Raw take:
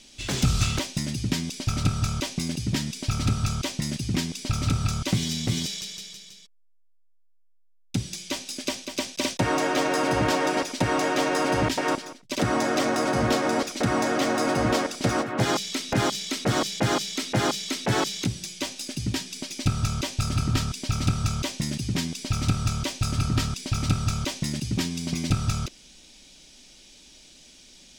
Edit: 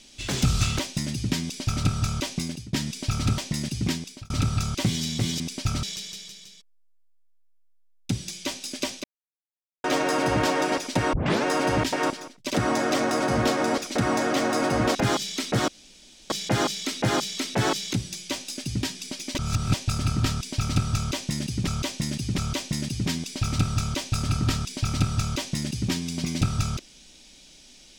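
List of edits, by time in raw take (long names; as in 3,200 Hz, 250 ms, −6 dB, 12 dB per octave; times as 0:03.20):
0:01.42–0:01.85: duplicate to 0:05.68
0:02.39–0:02.73: fade out, to −23 dB
0:03.38–0:03.66: remove
0:04.17–0:04.58: fade out
0:08.89–0:09.69: silence
0:10.98: tape start 0.31 s
0:14.80–0:15.88: remove
0:16.61: splice in room tone 0.62 s
0:19.66–0:20.05: reverse
0:21.27–0:21.98: repeat, 3 plays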